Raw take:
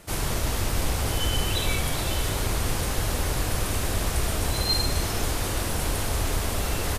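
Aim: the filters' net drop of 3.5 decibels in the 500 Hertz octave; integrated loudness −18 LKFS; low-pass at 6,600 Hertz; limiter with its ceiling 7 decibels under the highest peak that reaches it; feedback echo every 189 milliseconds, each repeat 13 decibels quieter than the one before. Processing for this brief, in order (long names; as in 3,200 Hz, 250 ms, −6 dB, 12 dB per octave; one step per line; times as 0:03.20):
low-pass filter 6,600 Hz
parametric band 500 Hz −4.5 dB
brickwall limiter −20 dBFS
repeating echo 189 ms, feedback 22%, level −13 dB
level +12.5 dB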